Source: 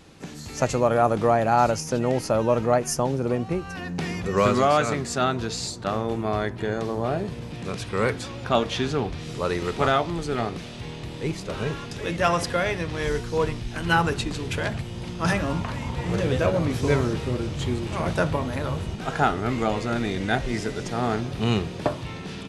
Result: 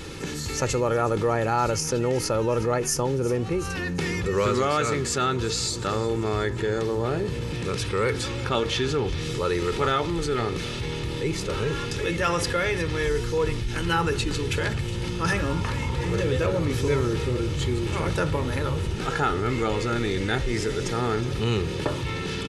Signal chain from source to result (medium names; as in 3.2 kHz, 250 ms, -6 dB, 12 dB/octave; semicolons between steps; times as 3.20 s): peaking EQ 740 Hz -8.5 dB 0.53 oct; comb 2.3 ms, depth 45%; feedback echo behind a high-pass 365 ms, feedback 60%, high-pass 2.6 kHz, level -16 dB; level flattener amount 50%; trim -3.5 dB